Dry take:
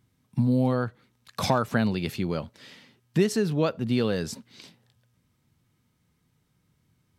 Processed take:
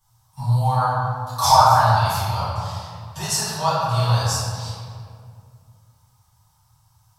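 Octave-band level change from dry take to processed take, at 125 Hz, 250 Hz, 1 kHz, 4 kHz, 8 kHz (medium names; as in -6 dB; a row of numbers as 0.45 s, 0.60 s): +8.0 dB, -9.0 dB, +17.5 dB, +11.0 dB, +15.0 dB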